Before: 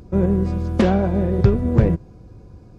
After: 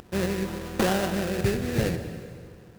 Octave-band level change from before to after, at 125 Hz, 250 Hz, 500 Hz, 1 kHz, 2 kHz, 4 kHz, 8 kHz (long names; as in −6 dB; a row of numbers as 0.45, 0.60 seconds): −11.5 dB, −9.0 dB, −6.0 dB, −3.5 dB, +3.0 dB, +6.0 dB, can't be measured